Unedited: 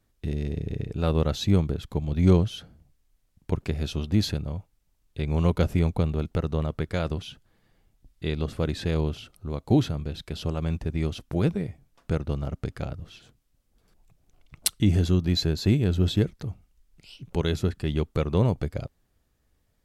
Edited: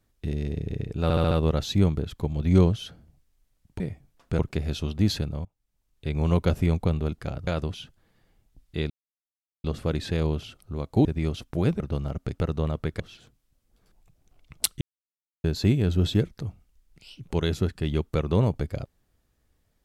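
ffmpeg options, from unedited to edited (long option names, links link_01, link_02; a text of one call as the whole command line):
ffmpeg -i in.wav -filter_complex "[0:a]asplit=17[link_01][link_02][link_03][link_04][link_05][link_06][link_07][link_08][link_09][link_10][link_11][link_12][link_13][link_14][link_15][link_16][link_17];[link_01]atrim=end=1.102[link_18];[link_02]atrim=start=1.028:end=1.102[link_19];[link_03]atrim=start=1.028:end=1.102[link_20];[link_04]atrim=start=1.028:end=1.102[link_21];[link_05]atrim=start=1.028:end=3.522[link_22];[link_06]atrim=start=11.578:end=12.172[link_23];[link_07]atrim=start=3.518:end=4.58,asetpts=PTS-STARTPTS,afade=type=out:start_time=1.058:duration=0.004:curve=hsin:silence=0.0891251[link_24];[link_08]atrim=start=4.58:end=6.332,asetpts=PTS-STARTPTS,afade=type=in:duration=0.66:silence=0.0891251[link_25];[link_09]atrim=start=12.748:end=13.022[link_26];[link_10]atrim=start=6.948:end=8.38,asetpts=PTS-STARTPTS,afade=type=out:start_time=1.428:duration=0.004:curve=hsin,apad=pad_dur=0.74[link_27];[link_11]atrim=start=8.38:end=9.792,asetpts=PTS-STARTPTS,afade=type=in:duration=0.004:curve=hsin[link_28];[link_12]atrim=start=10.828:end=11.582[link_29];[link_13]atrim=start=12.168:end=12.752[link_30];[link_14]atrim=start=6.328:end=6.952[link_31];[link_15]atrim=start=13.018:end=14.83,asetpts=PTS-STARTPTS,afade=type=out:start_time=1.808:duration=0.004:curve=hsin[link_32];[link_16]atrim=start=14.83:end=15.46,asetpts=PTS-STARTPTS,volume=0[link_33];[link_17]atrim=start=15.46,asetpts=PTS-STARTPTS,afade=type=in:duration=0.004:curve=hsin[link_34];[link_18][link_19]acrossfade=duration=0.004:curve1=hsin:curve2=hsin[link_35];[link_35][link_20]acrossfade=duration=0.004:curve1=hsin:curve2=hsin[link_36];[link_36][link_21]acrossfade=duration=0.004:curve1=hsin:curve2=hsin[link_37];[link_37][link_22]acrossfade=duration=0.004:curve1=hsin:curve2=hsin[link_38];[link_38][link_23]acrossfade=duration=0.004:curve1=hsin:curve2=hsin[link_39];[link_24][link_25]concat=n=2:v=0:a=1[link_40];[link_39][link_40]acrossfade=duration=0.004:curve1=hsin:curve2=hsin[link_41];[link_41][link_26]acrossfade=duration=0.004:curve1=hsin:curve2=hsin[link_42];[link_27][link_28]concat=n=2:v=0:a=1[link_43];[link_42][link_43]acrossfade=duration=0.004:curve1=hsin:curve2=hsin[link_44];[link_44][link_29]acrossfade=duration=0.004:curve1=hsin:curve2=hsin[link_45];[link_45][link_30]acrossfade=duration=0.004:curve1=hsin:curve2=hsin[link_46];[link_46][link_31]acrossfade=duration=0.004:curve1=hsin:curve2=hsin[link_47];[link_32][link_33][link_34]concat=n=3:v=0:a=1[link_48];[link_47][link_48]acrossfade=duration=0.004:curve1=hsin:curve2=hsin" out.wav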